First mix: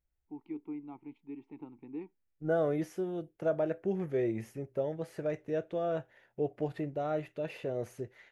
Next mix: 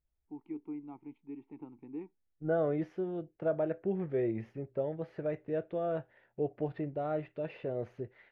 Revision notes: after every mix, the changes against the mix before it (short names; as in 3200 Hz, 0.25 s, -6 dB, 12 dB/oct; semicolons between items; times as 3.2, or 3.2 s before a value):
master: add air absorption 310 m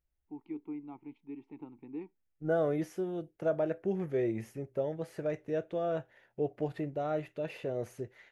master: remove air absorption 310 m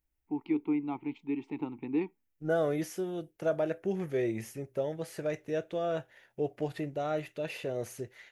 first voice +10.5 dB; master: add high shelf 2500 Hz +11.5 dB